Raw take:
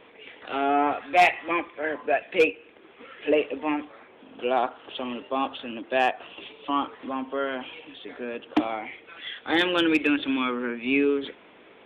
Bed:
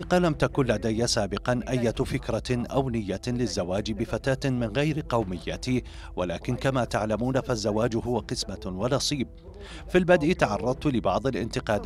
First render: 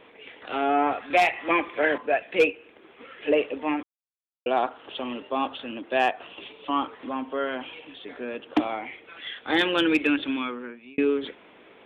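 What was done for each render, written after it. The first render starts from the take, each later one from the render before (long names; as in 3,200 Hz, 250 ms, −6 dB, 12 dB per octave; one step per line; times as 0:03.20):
0:01.10–0:01.98: multiband upward and downward compressor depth 100%
0:03.83–0:04.46: silence
0:10.15–0:10.98: fade out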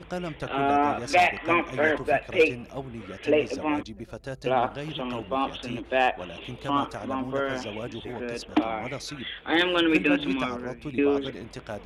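mix in bed −10.5 dB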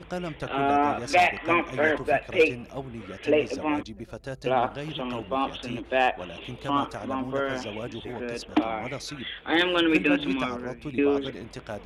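no processing that can be heard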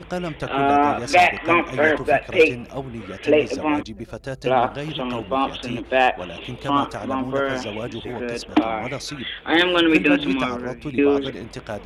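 level +5.5 dB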